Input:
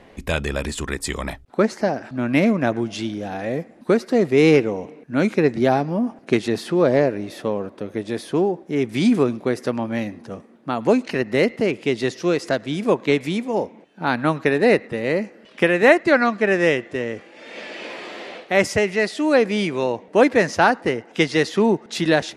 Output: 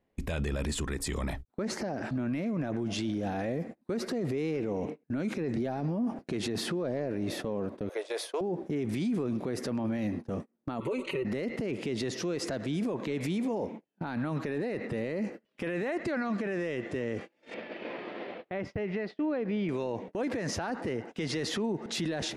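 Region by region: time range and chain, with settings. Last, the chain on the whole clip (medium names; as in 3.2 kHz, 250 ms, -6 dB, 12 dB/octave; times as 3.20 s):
7.89–8.41 s: steep high-pass 470 Hz + band-stop 1.8 kHz, Q 15
10.80–11.25 s: static phaser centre 1.1 kHz, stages 8 + comb 5.3 ms, depth 89% + compression 2.5:1, threshold -24 dBFS
17.54–19.69 s: compression 2.5:1, threshold -32 dBFS + distance through air 320 m
whole clip: gate -37 dBFS, range -32 dB; bass shelf 450 Hz +6.5 dB; peak limiter -24.5 dBFS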